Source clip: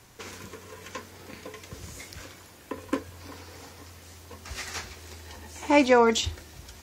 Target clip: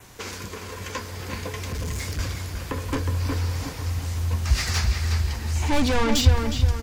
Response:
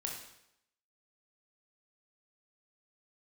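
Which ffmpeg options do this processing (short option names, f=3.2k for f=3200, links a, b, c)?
-filter_complex "[0:a]acontrast=72,adynamicequalizer=threshold=0.00398:dfrequency=4800:dqfactor=4.7:tfrequency=4800:tqfactor=4.7:attack=5:release=100:ratio=0.375:range=3:mode=boostabove:tftype=bell,dynaudnorm=f=460:g=5:m=3.5dB,asoftclip=type=tanh:threshold=-20dB,asubboost=boost=7:cutoff=140,asettb=1/sr,asplit=3[a][b][c];[a]atrim=end=1.584[d];[b]atrim=start=1.58:end=2.19,asetpts=PTS-STARTPTS,afade=t=in:d=0.004:c=qsin,afade=t=out:st=0.606:d=0.004:c=qsin,asoftclip=type=hard:threshold=-27dB[e];[c]atrim=start=2.186[f];[d][e]acrossfade=d=0.004:c1=hsin:c2=qsin[g];[g][f]acrossfade=d=0.004:c1=qsin:c2=hsin,asplit=2[h][i];[i]adelay=364,lowpass=f=3.4k:p=1,volume=-5dB,asplit=2[j][k];[k]adelay=364,lowpass=f=3.4k:p=1,volume=0.4,asplit=2[l][m];[m]adelay=364,lowpass=f=3.4k:p=1,volume=0.4,asplit=2[n][o];[o]adelay=364,lowpass=f=3.4k:p=1,volume=0.4,asplit=2[p][q];[q]adelay=364,lowpass=f=3.4k:p=1,volume=0.4[r];[h][j][l][n][p][r]amix=inputs=6:normalize=0"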